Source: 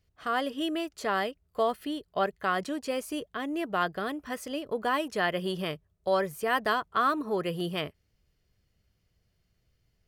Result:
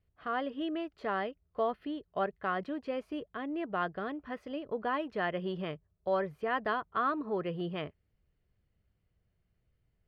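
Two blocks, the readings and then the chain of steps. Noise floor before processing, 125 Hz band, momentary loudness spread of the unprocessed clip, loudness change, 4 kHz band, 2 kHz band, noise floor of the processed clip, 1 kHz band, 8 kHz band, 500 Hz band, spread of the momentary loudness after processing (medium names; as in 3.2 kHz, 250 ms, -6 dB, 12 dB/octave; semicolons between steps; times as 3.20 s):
-74 dBFS, -3.5 dB, 8 LU, -4.5 dB, -10.5 dB, -6.0 dB, -78 dBFS, -5.0 dB, under -25 dB, -4.0 dB, 8 LU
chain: distance through air 370 m; trim -3 dB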